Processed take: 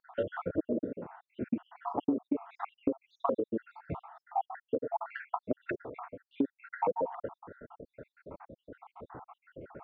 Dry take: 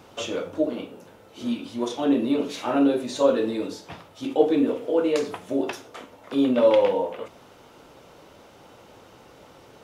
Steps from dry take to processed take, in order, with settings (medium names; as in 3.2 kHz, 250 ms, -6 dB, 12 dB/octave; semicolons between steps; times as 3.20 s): random holes in the spectrogram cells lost 77%; low-pass 1.6 kHz 24 dB/octave; compression 16:1, threshold -33 dBFS, peak gain reduction 17.5 dB; trim +6.5 dB